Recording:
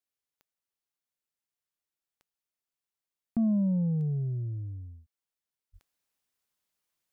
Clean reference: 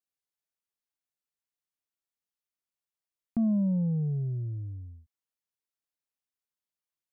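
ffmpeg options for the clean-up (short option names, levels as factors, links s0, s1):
-filter_complex "[0:a]adeclick=t=4,asplit=3[s0][s1][s2];[s0]afade=t=out:st=5.72:d=0.02[s3];[s1]highpass=f=140:w=0.5412,highpass=f=140:w=1.3066,afade=t=in:st=5.72:d=0.02,afade=t=out:st=5.84:d=0.02[s4];[s2]afade=t=in:st=5.84:d=0.02[s5];[s3][s4][s5]amix=inputs=3:normalize=0,asetnsamples=n=441:p=0,asendcmd='5.74 volume volume -9dB',volume=1"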